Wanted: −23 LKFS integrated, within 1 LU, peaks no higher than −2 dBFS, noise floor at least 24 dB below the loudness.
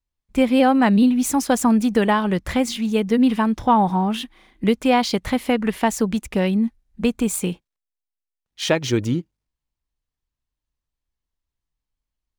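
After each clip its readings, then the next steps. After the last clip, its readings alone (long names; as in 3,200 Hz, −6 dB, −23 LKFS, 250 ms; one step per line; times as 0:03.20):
integrated loudness −20.0 LKFS; sample peak −4.5 dBFS; target loudness −23.0 LKFS
→ level −3 dB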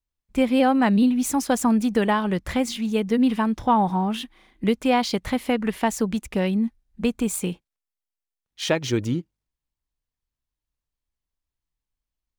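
integrated loudness −23.0 LKFS; sample peak −7.5 dBFS; background noise floor −88 dBFS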